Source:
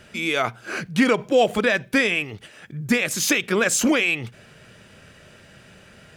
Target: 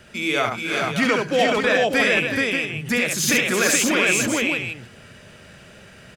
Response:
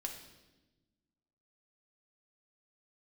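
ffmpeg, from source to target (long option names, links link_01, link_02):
-filter_complex "[0:a]asettb=1/sr,asplit=3[link_01][link_02][link_03];[link_01]atrim=end=1.024[link_04];[link_02]atrim=start=1.02:end=1.61,asetpts=PTS-STARTPTS,afade=type=in:duration=0.004:curve=qsin,afade=type=out:start_time=0.586:duration=0.004:curve=qsin,highshelf=frequency=7900:width_type=q:width=1.5:gain=-8.5[link_05];[link_03]atrim=start=1.606[link_06];[link_04][link_05]acrossfade=duration=0.004:curve1=hsin:curve2=qsin[link_07];[link_07][link_06]acrossfade=duration=0.004:curve1=qsin:curve2=hsin,aecho=1:1:70|371|428|585:0.596|0.335|0.708|0.376,acrossover=split=620|4700[link_08][link_09][link_10];[link_08]alimiter=limit=-17.5dB:level=0:latency=1[link_11];[link_11][link_09][link_10]amix=inputs=3:normalize=0"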